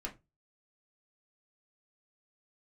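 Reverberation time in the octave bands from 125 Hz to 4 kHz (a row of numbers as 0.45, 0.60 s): 0.35, 0.25, 0.25, 0.20, 0.20, 0.15 s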